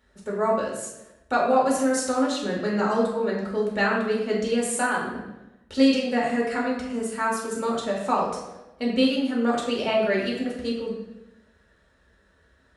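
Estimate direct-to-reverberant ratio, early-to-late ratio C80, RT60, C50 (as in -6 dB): -4.0 dB, 5.5 dB, 0.95 s, 2.5 dB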